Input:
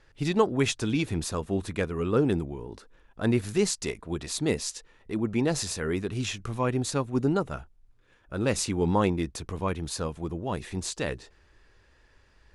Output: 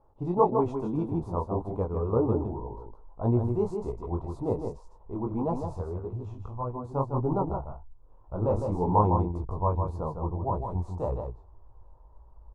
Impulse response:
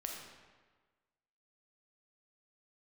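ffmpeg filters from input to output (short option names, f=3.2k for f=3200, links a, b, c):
-filter_complex "[0:a]asubboost=boost=4.5:cutoff=99,asettb=1/sr,asplit=3[a][b][c];[a]atrim=end=5.804[d];[b]atrim=start=5.8:end=6.95,asetpts=PTS-STARTPTS,afade=t=in:d=0.004:c=qsin,afade=t=out:st=1.146:d=0.004:c=qsin,acompressor=threshold=-33dB:ratio=3[e];[c]atrim=start=6.946[f];[d][e]acrossfade=d=0.004:c1=hsin:c2=qsin[g];[g][f]acrossfade=d=0.004:c1=qsin:c2=hsin,asettb=1/sr,asplit=3[h][i][j];[h]atrim=end=7.474[k];[i]atrim=start=7.47:end=8.92,asetpts=PTS-STARTPTS,afade=t=in:d=0.004:c=qsin,afade=t=out:st=1.446:d=0.004:c=qsin,asplit=2[l][m];[m]adelay=27,volume=-6.5dB[n];[l][n]amix=inputs=2:normalize=0,atrim=end_sample=63945[o];[j]atrim=start=8.916[p];[k][o]acrossfade=d=0.004:c1=hsin:c2=qsin[q];[q][p]acrossfade=d=0.004:c1=qsin:c2=hsin,flanger=delay=16.5:depth=6.7:speed=1.8,firequalizer=gain_entry='entry(250,0);entry(960,11);entry(1700,-29)':delay=0.05:min_phase=1,aecho=1:1:156:0.501"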